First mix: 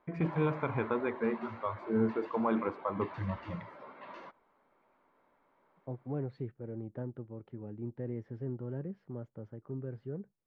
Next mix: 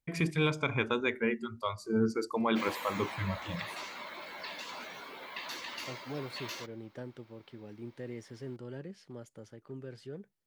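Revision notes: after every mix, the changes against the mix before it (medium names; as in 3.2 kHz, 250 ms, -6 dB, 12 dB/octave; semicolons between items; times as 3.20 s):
second voice: add bass shelf 220 Hz -10.5 dB; background: entry +2.35 s; master: remove Chebyshev low-pass 1.1 kHz, order 2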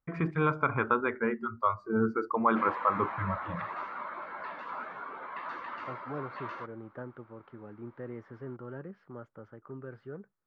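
master: add resonant low-pass 1.3 kHz, resonance Q 3.5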